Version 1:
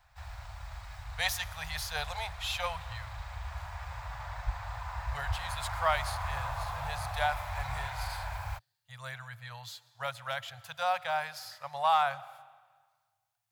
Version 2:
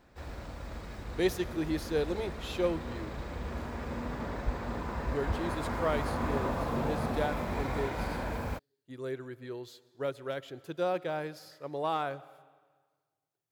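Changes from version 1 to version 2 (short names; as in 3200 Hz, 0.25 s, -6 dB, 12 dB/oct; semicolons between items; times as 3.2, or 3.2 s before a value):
speech -8.0 dB; master: remove elliptic band-stop 110–750 Hz, stop band 60 dB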